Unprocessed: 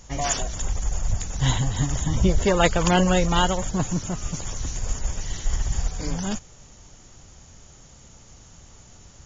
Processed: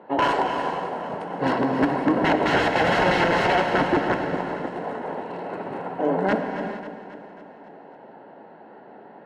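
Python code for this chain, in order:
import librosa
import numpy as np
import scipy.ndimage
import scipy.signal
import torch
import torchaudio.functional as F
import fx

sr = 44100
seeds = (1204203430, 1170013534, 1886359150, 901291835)

p1 = fx.wiener(x, sr, points=9)
p2 = fx.peak_eq(p1, sr, hz=500.0, db=10.5, octaves=1.7)
p3 = fx.formant_shift(p2, sr, semitones=5)
p4 = scipy.signal.sosfilt(scipy.signal.butter(4, 210.0, 'highpass', fs=sr, output='sos'), p3)
p5 = (np.mod(10.0 ** (15.0 / 20.0) * p4 + 1.0, 2.0) - 1.0) / 10.0 ** (15.0 / 20.0)
p6 = scipy.signal.sosfilt(scipy.signal.butter(2, 1700.0, 'lowpass', fs=sr, output='sos'), p5)
p7 = fx.notch_comb(p6, sr, f0_hz=1200.0)
p8 = p7 + fx.echo_feedback(p7, sr, ms=271, feedback_pct=58, wet_db=-12, dry=0)
p9 = fx.rev_gated(p8, sr, seeds[0], gate_ms=490, shape='flat', drr_db=4.5)
y = F.gain(torch.from_numpy(p9), 4.5).numpy()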